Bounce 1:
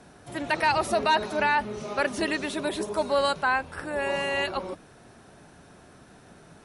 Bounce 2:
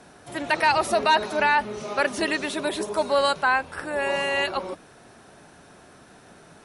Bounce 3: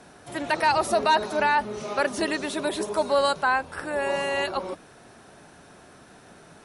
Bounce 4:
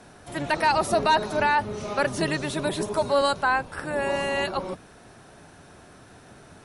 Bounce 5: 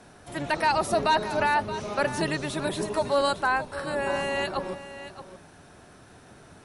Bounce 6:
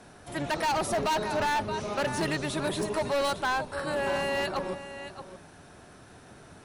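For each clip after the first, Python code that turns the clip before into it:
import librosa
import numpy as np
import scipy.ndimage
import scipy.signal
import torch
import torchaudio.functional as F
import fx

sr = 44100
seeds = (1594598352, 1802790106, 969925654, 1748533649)

y1 = fx.low_shelf(x, sr, hz=230.0, db=-7.0)
y1 = F.gain(torch.from_numpy(y1), 3.5).numpy()
y2 = fx.dynamic_eq(y1, sr, hz=2400.0, q=1.1, threshold_db=-35.0, ratio=4.0, max_db=-5)
y3 = fx.octave_divider(y2, sr, octaves=1, level_db=-1.0)
y4 = y3 + 10.0 ** (-13.0 / 20.0) * np.pad(y3, (int(624 * sr / 1000.0), 0))[:len(y3)]
y4 = F.gain(torch.from_numpy(y4), -2.0).numpy()
y5 = np.clip(10.0 ** (24.0 / 20.0) * y4, -1.0, 1.0) / 10.0 ** (24.0 / 20.0)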